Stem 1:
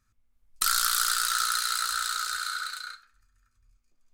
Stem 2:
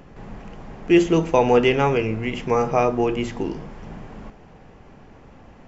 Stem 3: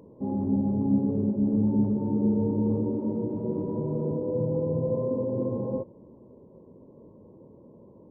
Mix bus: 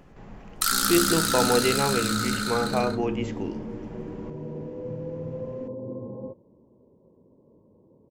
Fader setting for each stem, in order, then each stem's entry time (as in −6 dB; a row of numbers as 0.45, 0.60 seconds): +1.0, −6.5, −7.0 decibels; 0.00, 0.00, 0.50 seconds